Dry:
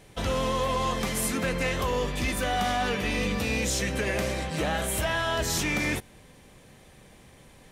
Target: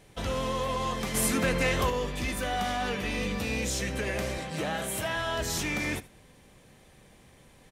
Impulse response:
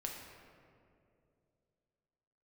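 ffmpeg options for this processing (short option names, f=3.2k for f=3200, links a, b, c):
-filter_complex "[0:a]asettb=1/sr,asplit=3[a][b][c];[a]atrim=end=1.144[d];[b]atrim=start=1.14:end=1.9,asetpts=PTS-STARTPTS,afade=t=in:d=0.004:c=qsin,afade=t=out:st=0.756:d=0.004:c=qsin,acontrast=26[e];[c]atrim=start=1.896[f];[d][e]acrossfade=d=0.004:c1=hsin:c2=qsin[g];[g][f]acrossfade=d=0.004:c1=qsin:c2=hsin,asettb=1/sr,asplit=3[h][i][j];[h]atrim=end=4.384[k];[i]atrim=start=4.38:end=5.16,asetpts=PTS-STARTPTS,afade=t=in:d=0.004:c=qsin,afade=t=out:st=0.776:d=0.004:c=qsin,highpass=f=88:w=0.5412,highpass=f=88:w=1.3066[l];[j]atrim=start=5.156[m];[k][l]acrossfade=d=0.004:c1=hsin:c2=qsin[n];[n][m]acrossfade=d=0.004:c1=qsin:c2=hsin,aecho=1:1:77:0.119,volume=-3.5dB"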